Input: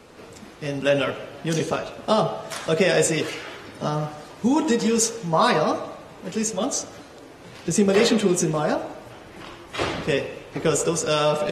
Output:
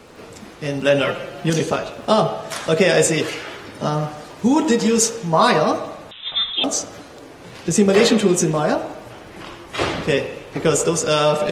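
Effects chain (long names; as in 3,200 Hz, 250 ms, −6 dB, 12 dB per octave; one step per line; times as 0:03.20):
surface crackle 38 per second −46 dBFS
0:01.04–0:01.50: comb filter 5.7 ms, depth 71%
0:06.11–0:06.64: voice inversion scrambler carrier 3,800 Hz
level +4 dB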